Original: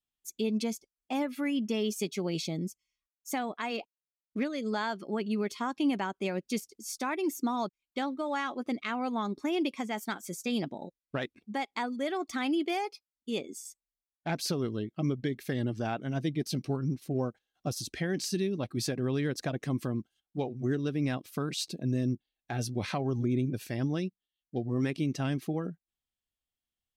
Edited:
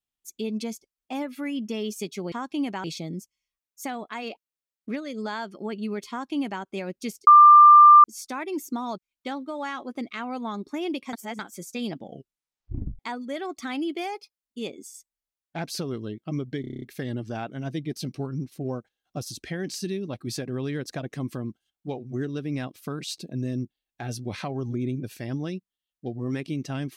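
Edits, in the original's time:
0:05.58–0:06.10: duplicate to 0:02.32
0:06.75: insert tone 1,190 Hz −7.5 dBFS 0.77 s
0:09.84–0:10.10: reverse
0:10.66: tape stop 1.04 s
0:15.32: stutter 0.03 s, 8 plays

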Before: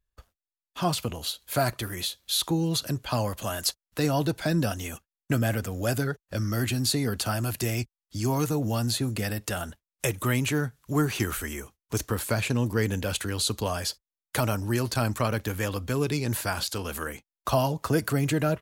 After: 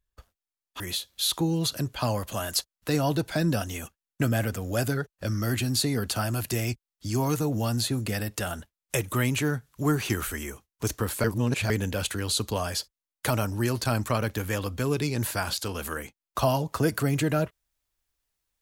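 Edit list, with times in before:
0:00.80–0:01.90: remove
0:12.34–0:12.80: reverse

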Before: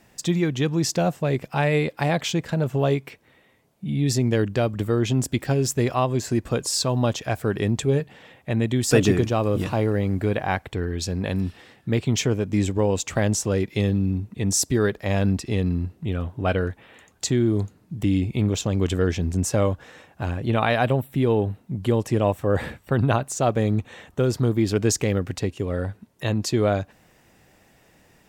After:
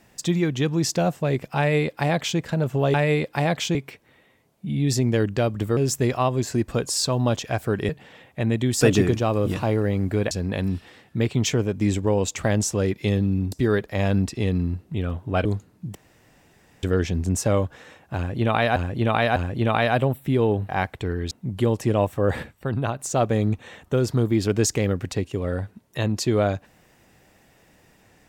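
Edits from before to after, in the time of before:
0:01.58–0:02.39: duplicate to 0:02.94
0:04.96–0:05.54: remove
0:07.66–0:07.99: remove
0:10.41–0:11.03: move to 0:21.57
0:14.24–0:14.63: remove
0:16.56–0:17.53: remove
0:18.03–0:18.91: fill with room tone
0:20.24–0:20.84: repeat, 3 plays
0:22.69–0:23.25: clip gain −5 dB

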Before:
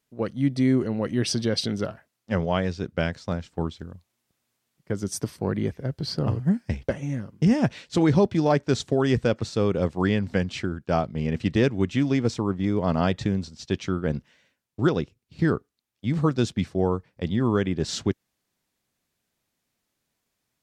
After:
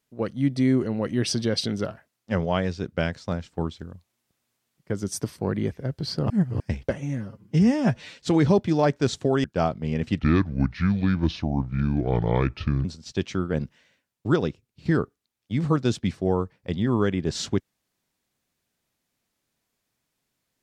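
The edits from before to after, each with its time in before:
0:06.30–0:06.60: reverse
0:07.18–0:07.84: time-stretch 1.5×
0:09.11–0:10.77: remove
0:11.52–0:13.38: play speed 70%

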